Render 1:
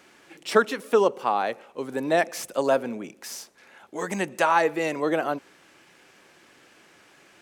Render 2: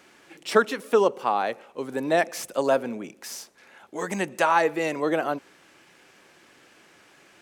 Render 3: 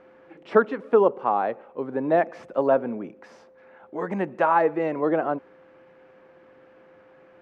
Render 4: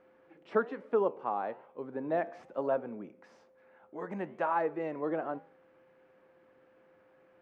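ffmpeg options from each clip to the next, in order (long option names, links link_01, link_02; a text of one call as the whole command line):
ffmpeg -i in.wav -af anull out.wav
ffmpeg -i in.wav -af "aeval=exprs='val(0)+0.002*sin(2*PI*520*n/s)':channel_layout=same,lowpass=1300,volume=2dB" out.wav
ffmpeg -i in.wav -af "flanger=delay=9.2:depth=4.7:regen=-87:speed=1.1:shape=sinusoidal,volume=-6dB" out.wav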